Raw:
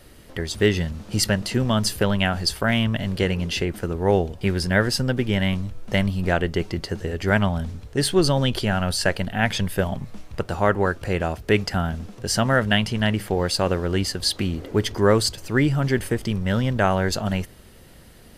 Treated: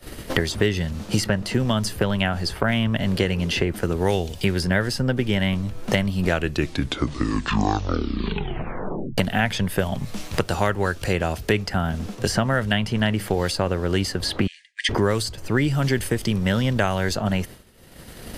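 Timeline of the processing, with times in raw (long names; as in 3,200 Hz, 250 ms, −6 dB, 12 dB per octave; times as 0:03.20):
0:06.23: tape stop 2.95 s
0:14.47–0:14.89: linear-phase brick-wall band-pass 1,600–10,000 Hz
whole clip: downward expander −35 dBFS; multiband upward and downward compressor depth 100%; level −1 dB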